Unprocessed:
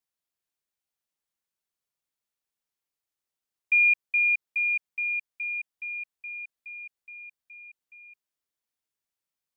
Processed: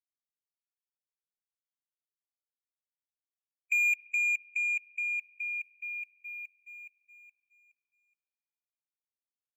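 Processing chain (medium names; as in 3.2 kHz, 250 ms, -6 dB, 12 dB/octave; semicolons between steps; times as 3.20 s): waveshaping leveller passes 1; expander -33 dBFS; harmonic-percussive split harmonic -7 dB; spring tank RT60 2.7 s, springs 36/60 ms, chirp 65 ms, DRR 18 dB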